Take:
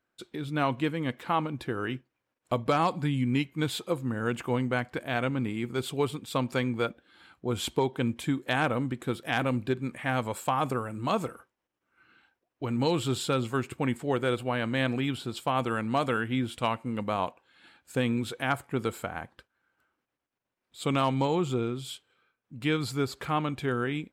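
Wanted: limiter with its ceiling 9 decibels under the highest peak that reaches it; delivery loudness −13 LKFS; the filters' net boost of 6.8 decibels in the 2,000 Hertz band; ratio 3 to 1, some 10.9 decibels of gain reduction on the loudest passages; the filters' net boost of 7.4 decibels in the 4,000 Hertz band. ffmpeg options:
ffmpeg -i in.wav -af "equalizer=frequency=2000:width_type=o:gain=7.5,equalizer=frequency=4000:width_type=o:gain=6.5,acompressor=threshold=-34dB:ratio=3,volume=24.5dB,alimiter=limit=-1dB:level=0:latency=1" out.wav

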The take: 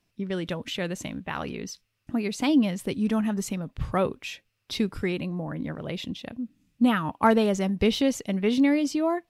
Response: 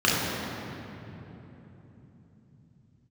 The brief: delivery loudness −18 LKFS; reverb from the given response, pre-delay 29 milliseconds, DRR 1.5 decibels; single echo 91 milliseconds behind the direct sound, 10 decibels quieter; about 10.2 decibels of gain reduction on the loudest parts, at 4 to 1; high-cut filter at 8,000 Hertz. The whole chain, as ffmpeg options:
-filter_complex "[0:a]lowpass=8000,acompressor=threshold=-28dB:ratio=4,aecho=1:1:91:0.316,asplit=2[link_01][link_02];[1:a]atrim=start_sample=2205,adelay=29[link_03];[link_02][link_03]afir=irnorm=-1:irlink=0,volume=-20dB[link_04];[link_01][link_04]amix=inputs=2:normalize=0,volume=9.5dB"

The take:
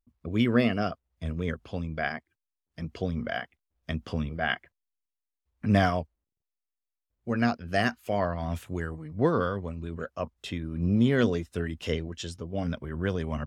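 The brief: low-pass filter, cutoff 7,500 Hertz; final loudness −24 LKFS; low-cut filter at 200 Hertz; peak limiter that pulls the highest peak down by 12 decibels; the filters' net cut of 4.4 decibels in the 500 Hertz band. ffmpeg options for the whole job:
ffmpeg -i in.wav -af "highpass=200,lowpass=7500,equalizer=frequency=500:width_type=o:gain=-5.5,volume=13dB,alimiter=limit=-11dB:level=0:latency=1" out.wav

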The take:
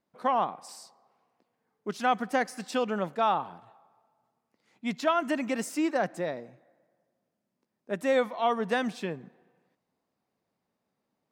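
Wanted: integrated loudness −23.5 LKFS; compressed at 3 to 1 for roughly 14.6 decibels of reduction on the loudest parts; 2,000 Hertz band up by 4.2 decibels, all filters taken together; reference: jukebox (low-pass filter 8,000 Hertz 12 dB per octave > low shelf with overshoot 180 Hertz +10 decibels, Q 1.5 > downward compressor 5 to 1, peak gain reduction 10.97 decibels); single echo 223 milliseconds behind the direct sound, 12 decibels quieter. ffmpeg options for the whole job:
ffmpeg -i in.wav -af "equalizer=frequency=2000:width_type=o:gain=5.5,acompressor=threshold=-40dB:ratio=3,lowpass=8000,lowshelf=frequency=180:width_type=q:width=1.5:gain=10,aecho=1:1:223:0.251,acompressor=threshold=-45dB:ratio=5,volume=26dB" out.wav

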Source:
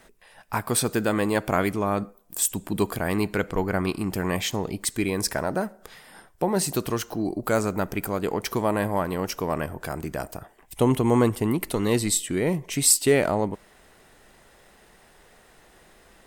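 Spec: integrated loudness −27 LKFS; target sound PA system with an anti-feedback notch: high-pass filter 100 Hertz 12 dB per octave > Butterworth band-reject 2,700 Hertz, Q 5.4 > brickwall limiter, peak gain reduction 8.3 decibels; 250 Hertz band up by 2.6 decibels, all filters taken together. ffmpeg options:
ffmpeg -i in.wav -af "highpass=100,asuperstop=centerf=2700:order=8:qfactor=5.4,equalizer=frequency=250:width_type=o:gain=3.5,alimiter=limit=-14dB:level=0:latency=1" out.wav

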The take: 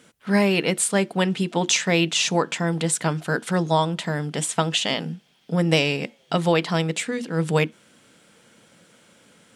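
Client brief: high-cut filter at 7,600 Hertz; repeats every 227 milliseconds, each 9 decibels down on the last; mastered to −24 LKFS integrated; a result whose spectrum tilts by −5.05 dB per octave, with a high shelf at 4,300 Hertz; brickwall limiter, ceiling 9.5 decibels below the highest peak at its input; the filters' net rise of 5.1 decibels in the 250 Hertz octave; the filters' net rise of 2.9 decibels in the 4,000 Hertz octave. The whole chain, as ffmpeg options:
ffmpeg -i in.wav -af "lowpass=7600,equalizer=frequency=250:width_type=o:gain=8.5,equalizer=frequency=4000:width_type=o:gain=6.5,highshelf=frequency=4300:gain=-4.5,alimiter=limit=-13dB:level=0:latency=1,aecho=1:1:227|454|681|908:0.355|0.124|0.0435|0.0152,volume=-1dB" out.wav

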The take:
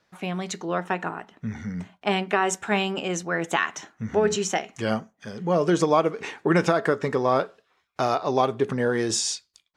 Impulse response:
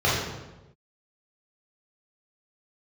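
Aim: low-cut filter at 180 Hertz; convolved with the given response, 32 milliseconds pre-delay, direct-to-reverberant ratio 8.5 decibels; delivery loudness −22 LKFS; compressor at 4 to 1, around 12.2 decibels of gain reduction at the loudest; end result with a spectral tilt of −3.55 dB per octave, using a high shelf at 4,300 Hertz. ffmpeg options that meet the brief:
-filter_complex "[0:a]highpass=180,highshelf=frequency=4300:gain=5,acompressor=threshold=-31dB:ratio=4,asplit=2[link_01][link_02];[1:a]atrim=start_sample=2205,adelay=32[link_03];[link_02][link_03]afir=irnorm=-1:irlink=0,volume=-26.5dB[link_04];[link_01][link_04]amix=inputs=2:normalize=0,volume=12dB"

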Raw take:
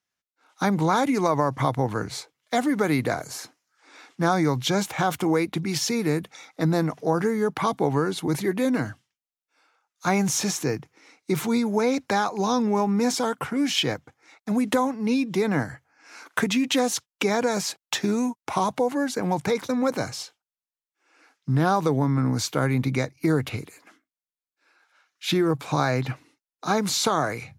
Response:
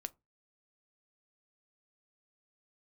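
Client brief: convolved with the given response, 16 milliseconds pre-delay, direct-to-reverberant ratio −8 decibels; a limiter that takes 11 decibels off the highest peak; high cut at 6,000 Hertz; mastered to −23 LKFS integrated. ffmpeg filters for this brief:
-filter_complex "[0:a]lowpass=6000,alimiter=limit=-19dB:level=0:latency=1,asplit=2[link_01][link_02];[1:a]atrim=start_sample=2205,adelay=16[link_03];[link_02][link_03]afir=irnorm=-1:irlink=0,volume=11dB[link_04];[link_01][link_04]amix=inputs=2:normalize=0,volume=-3dB"

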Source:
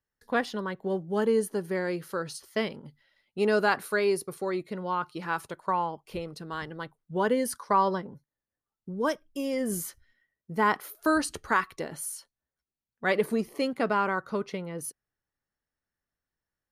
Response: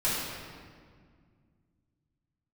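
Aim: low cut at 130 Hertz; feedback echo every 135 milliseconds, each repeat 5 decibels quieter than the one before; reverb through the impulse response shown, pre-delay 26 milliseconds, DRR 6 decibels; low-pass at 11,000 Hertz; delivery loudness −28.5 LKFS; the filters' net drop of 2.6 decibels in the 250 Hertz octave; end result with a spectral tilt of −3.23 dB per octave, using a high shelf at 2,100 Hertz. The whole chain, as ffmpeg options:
-filter_complex "[0:a]highpass=130,lowpass=11000,equalizer=frequency=250:width_type=o:gain=-3,highshelf=frequency=2100:gain=6.5,aecho=1:1:135|270|405|540|675|810|945:0.562|0.315|0.176|0.0988|0.0553|0.031|0.0173,asplit=2[link_01][link_02];[1:a]atrim=start_sample=2205,adelay=26[link_03];[link_02][link_03]afir=irnorm=-1:irlink=0,volume=-17dB[link_04];[link_01][link_04]amix=inputs=2:normalize=0,volume=-2dB"

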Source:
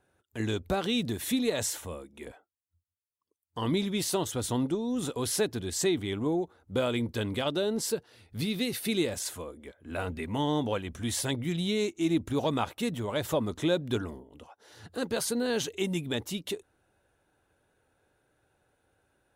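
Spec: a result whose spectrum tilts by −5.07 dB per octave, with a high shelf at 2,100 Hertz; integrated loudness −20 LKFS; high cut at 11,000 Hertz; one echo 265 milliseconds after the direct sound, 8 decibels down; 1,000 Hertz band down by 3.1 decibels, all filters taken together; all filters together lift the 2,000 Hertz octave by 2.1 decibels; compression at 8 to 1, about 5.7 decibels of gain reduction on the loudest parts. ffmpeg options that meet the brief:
ffmpeg -i in.wav -af "lowpass=11000,equalizer=frequency=1000:width_type=o:gain=-4.5,equalizer=frequency=2000:width_type=o:gain=8.5,highshelf=frequency=2100:gain=-7.5,acompressor=threshold=-29dB:ratio=8,aecho=1:1:265:0.398,volume=14.5dB" out.wav

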